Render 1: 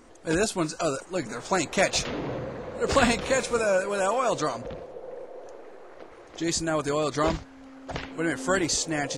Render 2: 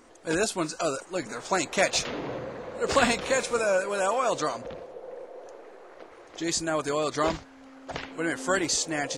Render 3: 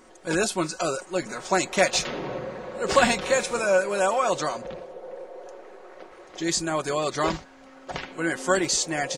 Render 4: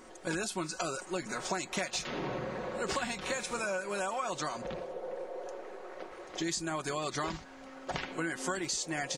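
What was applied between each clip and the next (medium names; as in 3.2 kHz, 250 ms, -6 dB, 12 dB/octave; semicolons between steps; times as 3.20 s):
bass shelf 200 Hz -8.5 dB
comb 5.4 ms, depth 44%; trim +1.5 dB
dynamic bell 520 Hz, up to -6 dB, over -37 dBFS, Q 1.9; compression 10:1, threshold -31 dBFS, peak gain reduction 16 dB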